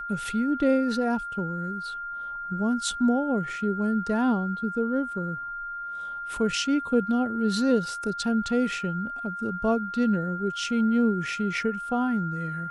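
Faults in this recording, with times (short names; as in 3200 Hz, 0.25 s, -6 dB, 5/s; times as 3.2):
tone 1400 Hz -32 dBFS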